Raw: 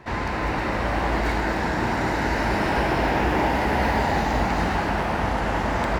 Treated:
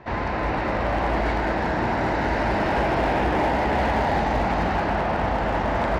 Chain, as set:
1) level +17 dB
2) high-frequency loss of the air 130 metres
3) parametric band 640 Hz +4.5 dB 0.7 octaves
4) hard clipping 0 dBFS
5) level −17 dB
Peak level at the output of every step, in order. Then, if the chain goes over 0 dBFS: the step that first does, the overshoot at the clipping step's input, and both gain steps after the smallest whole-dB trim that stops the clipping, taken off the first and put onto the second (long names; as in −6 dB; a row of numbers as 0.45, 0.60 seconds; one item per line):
+8.0, +7.5, +8.5, 0.0, −17.0 dBFS
step 1, 8.5 dB
step 1 +8 dB, step 5 −8 dB